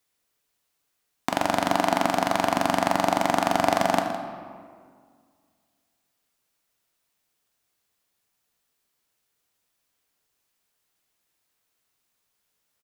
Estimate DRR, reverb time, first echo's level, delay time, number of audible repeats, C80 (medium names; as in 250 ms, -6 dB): 3.0 dB, 2.1 s, -13.0 dB, 161 ms, 1, 6.0 dB